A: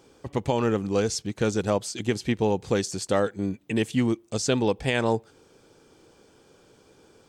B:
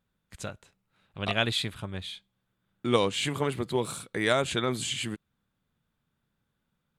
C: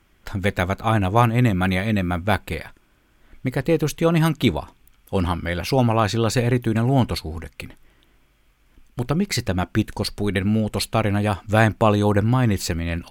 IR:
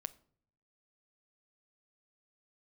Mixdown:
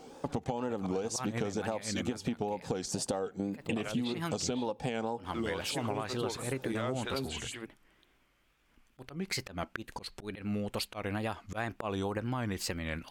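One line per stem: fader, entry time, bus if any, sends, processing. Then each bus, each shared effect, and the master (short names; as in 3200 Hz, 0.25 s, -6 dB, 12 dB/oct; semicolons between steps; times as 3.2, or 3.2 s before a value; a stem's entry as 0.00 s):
+2.5 dB, 0.00 s, bus A, send -21.5 dB, thirty-one-band EQ 160 Hz +11 dB, 250 Hz +10 dB, 500 Hz +6 dB, 800 Hz +11 dB, 2000 Hz -6 dB
-4.0 dB, 2.50 s, no bus, send -5 dB, limiter -18.5 dBFS, peak gain reduction 8.5 dB; photocell phaser 4 Hz
-6.0 dB, 0.00 s, bus A, no send, high shelf 9100 Hz -7 dB; auto swell 0.182 s
bus A: 0.0 dB, low shelf 220 Hz -10 dB; compressor, threshold -26 dBFS, peak gain reduction 13.5 dB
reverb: on, pre-delay 7 ms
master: wow and flutter 110 cents; compressor, threshold -30 dBFS, peak gain reduction 9.5 dB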